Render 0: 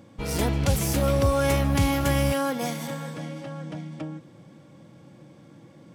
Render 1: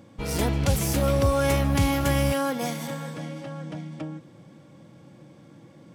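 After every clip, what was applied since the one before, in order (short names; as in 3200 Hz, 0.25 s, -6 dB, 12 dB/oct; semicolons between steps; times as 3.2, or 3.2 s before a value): nothing audible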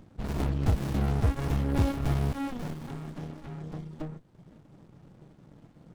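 reverb removal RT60 0.72 s; notch 2300 Hz, Q 5.5; running maximum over 65 samples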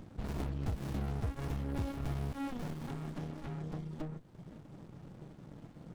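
compressor 2.5:1, threshold -42 dBFS, peak gain reduction 14.5 dB; gain +2.5 dB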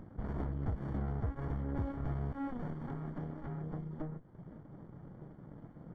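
polynomial smoothing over 41 samples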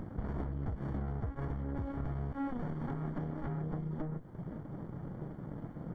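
compressor, threshold -42 dBFS, peak gain reduction 11 dB; gain +8 dB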